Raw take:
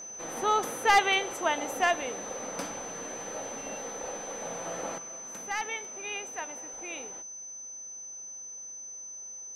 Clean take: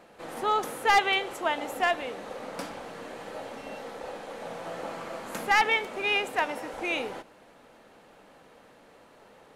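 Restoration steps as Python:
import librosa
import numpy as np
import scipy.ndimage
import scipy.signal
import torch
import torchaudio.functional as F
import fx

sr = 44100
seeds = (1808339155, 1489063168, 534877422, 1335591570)

y = fx.fix_declick_ar(x, sr, threshold=6.5)
y = fx.notch(y, sr, hz=6100.0, q=30.0)
y = fx.fix_level(y, sr, at_s=4.98, step_db=11.0)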